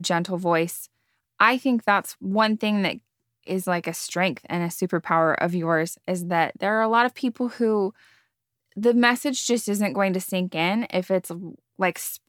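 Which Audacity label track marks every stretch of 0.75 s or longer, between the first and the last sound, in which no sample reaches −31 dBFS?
7.890000	8.770000	silence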